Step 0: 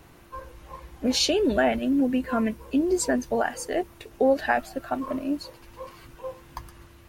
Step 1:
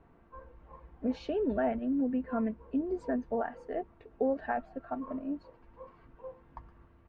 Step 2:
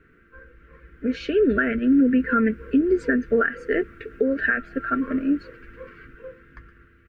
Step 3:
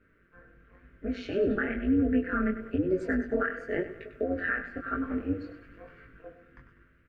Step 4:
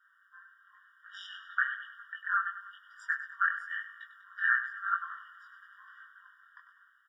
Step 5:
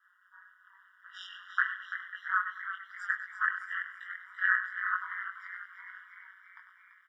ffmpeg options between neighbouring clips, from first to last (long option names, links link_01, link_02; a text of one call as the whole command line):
ffmpeg -i in.wav -af "lowpass=1300,aecho=1:1:4.4:0.32,volume=-8.5dB" out.wav
ffmpeg -i in.wav -af "firequalizer=gain_entry='entry(210,0);entry(440,4);entry(820,-29);entry(1400,14);entry(3700,3)':delay=0.05:min_phase=1,dynaudnorm=framelen=270:gausssize=11:maxgain=10.5dB,alimiter=limit=-14dB:level=0:latency=1:release=280,volume=3dB" out.wav
ffmpeg -i in.wav -af "tremolo=f=190:d=0.788,aecho=1:1:99|198|297|396:0.266|0.117|0.0515|0.0227,flanger=delay=18.5:depth=4.9:speed=1,volume=-2dB" out.wav
ffmpeg -i in.wav -af "afftfilt=real='re*eq(mod(floor(b*sr/1024/960),2),1)':imag='im*eq(mod(floor(b*sr/1024/960),2),1)':win_size=1024:overlap=0.75,volume=4dB" out.wav
ffmpeg -i in.wav -filter_complex "[0:a]aeval=exprs='val(0)*sin(2*PI*92*n/s)':channel_layout=same,asplit=2[link_01][link_02];[link_02]asplit=7[link_03][link_04][link_05][link_06][link_07][link_08][link_09];[link_03]adelay=337,afreqshift=65,volume=-10dB[link_10];[link_04]adelay=674,afreqshift=130,volume=-14.9dB[link_11];[link_05]adelay=1011,afreqshift=195,volume=-19.8dB[link_12];[link_06]adelay=1348,afreqshift=260,volume=-24.6dB[link_13];[link_07]adelay=1685,afreqshift=325,volume=-29.5dB[link_14];[link_08]adelay=2022,afreqshift=390,volume=-34.4dB[link_15];[link_09]adelay=2359,afreqshift=455,volume=-39.3dB[link_16];[link_10][link_11][link_12][link_13][link_14][link_15][link_16]amix=inputs=7:normalize=0[link_17];[link_01][link_17]amix=inputs=2:normalize=0,volume=2.5dB" out.wav